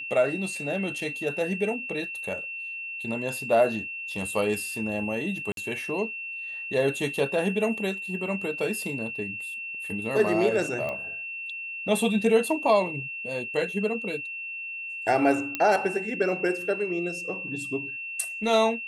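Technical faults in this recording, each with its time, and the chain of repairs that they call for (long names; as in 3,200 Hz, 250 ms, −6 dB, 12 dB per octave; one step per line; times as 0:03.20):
whistle 2,700 Hz −33 dBFS
0:05.52–0:05.57: drop-out 52 ms
0:10.89: click −21 dBFS
0:15.55: click −12 dBFS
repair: click removal
notch filter 2,700 Hz, Q 30
repair the gap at 0:05.52, 52 ms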